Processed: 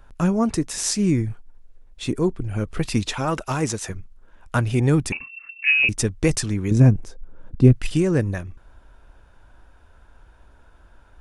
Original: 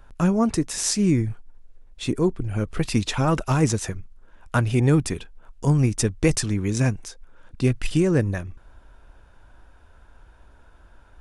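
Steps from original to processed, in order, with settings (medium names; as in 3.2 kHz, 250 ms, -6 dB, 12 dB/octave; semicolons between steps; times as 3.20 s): 3.13–3.90 s: bass shelf 230 Hz -8.5 dB; 5.12–5.89 s: frequency inversion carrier 2.7 kHz; 6.71–7.73 s: tilt shelf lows +9 dB, about 890 Hz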